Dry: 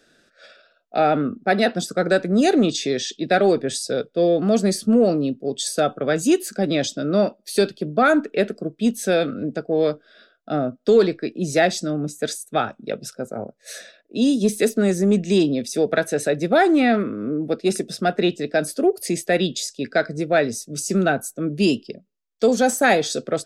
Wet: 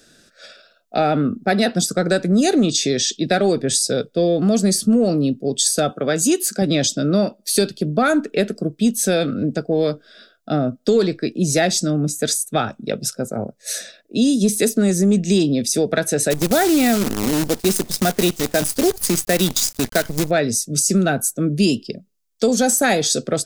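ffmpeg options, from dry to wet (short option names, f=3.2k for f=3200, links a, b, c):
-filter_complex "[0:a]asettb=1/sr,asplit=3[a][b][c];[a]atrim=end=5.914[d];[b]atrim=start=5.91:end=6.62,asetpts=PTS-STARTPTS,afade=t=in:d=0.004:c=qsin,afade=t=out:st=0.706:d=0.004:c=qsin,highpass=f=210:p=1[e];[c]atrim=start=6.616[f];[d][e]acrossfade=d=0.004:c1=hsin:c2=qsin[g];[g][f]acrossfade=d=0.004:c1=qsin:c2=hsin,asplit=3[h][i][j];[h]afade=t=out:st=16.3:d=0.02[k];[i]acrusher=bits=5:dc=4:mix=0:aa=0.000001,afade=t=in:st=16.3:d=0.02,afade=t=out:st=20.29:d=0.02[l];[j]afade=t=in:st=20.29:d=0.02[m];[k][l][m]amix=inputs=3:normalize=0,bass=f=250:g=7,treble=f=4k:g=10,acompressor=threshold=-19dB:ratio=2,volume=3dB"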